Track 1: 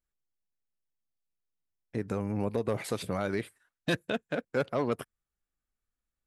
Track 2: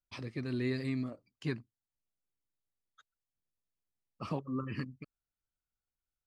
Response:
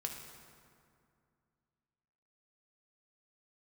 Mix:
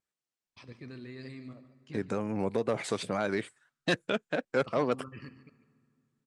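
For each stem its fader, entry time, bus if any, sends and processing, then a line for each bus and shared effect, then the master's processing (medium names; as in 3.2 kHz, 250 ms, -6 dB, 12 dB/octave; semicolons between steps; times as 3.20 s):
+2.5 dB, 0.00 s, no send, no echo send, high-pass 130 Hz; wow and flutter 89 cents
-4.5 dB, 0.45 s, send -7 dB, echo send -11.5 dB, level held to a coarse grid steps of 10 dB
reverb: on, RT60 2.3 s, pre-delay 3 ms
echo: delay 146 ms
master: steep low-pass 9.2 kHz 36 dB/octave; bass shelf 390 Hz -3 dB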